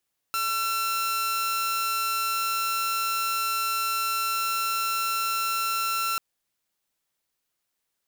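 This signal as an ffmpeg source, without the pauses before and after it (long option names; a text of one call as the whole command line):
ffmpeg -f lavfi -i "aevalsrc='0.0794*(2*mod(1350*t,1)-1)':duration=5.84:sample_rate=44100" out.wav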